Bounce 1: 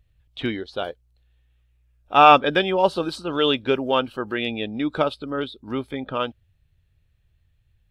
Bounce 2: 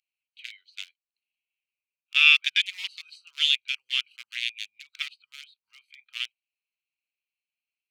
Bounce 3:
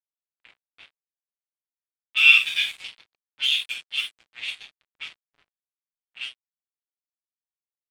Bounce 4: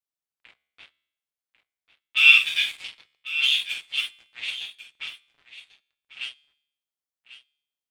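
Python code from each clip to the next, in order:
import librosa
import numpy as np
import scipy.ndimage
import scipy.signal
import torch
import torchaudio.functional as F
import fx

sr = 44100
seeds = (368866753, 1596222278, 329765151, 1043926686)

y1 = fx.wiener(x, sr, points=25)
y1 = scipy.signal.sosfilt(scipy.signal.ellip(4, 1.0, 70, 2200.0, 'highpass', fs=sr, output='sos'), y1)
y1 = F.gain(torch.from_numpy(y1), 7.0).numpy()
y2 = fx.rev_gated(y1, sr, seeds[0], gate_ms=130, shape='falling', drr_db=-7.5)
y2 = np.sign(y2) * np.maximum(np.abs(y2) - 10.0 ** (-30.5 / 20.0), 0.0)
y2 = fx.env_lowpass(y2, sr, base_hz=2100.0, full_db=-16.5)
y2 = F.gain(torch.from_numpy(y2), -7.5).numpy()
y3 = fx.comb_fb(y2, sr, f0_hz=74.0, decay_s=0.77, harmonics='all', damping=0.0, mix_pct=30)
y3 = y3 + 10.0 ** (-13.5 / 20.0) * np.pad(y3, (int(1095 * sr / 1000.0), 0))[:len(y3)]
y3 = F.gain(torch.from_numpy(y3), 3.0).numpy()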